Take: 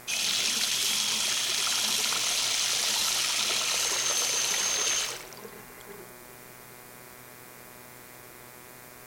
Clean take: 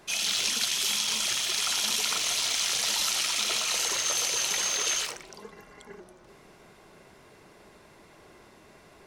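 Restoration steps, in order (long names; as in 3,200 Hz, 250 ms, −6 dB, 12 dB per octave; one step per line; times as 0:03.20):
clipped peaks rebuilt −15.5 dBFS
hum removal 123.2 Hz, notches 20
broadband denoise 7 dB, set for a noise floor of −48 dBFS
echo removal 110 ms −9.5 dB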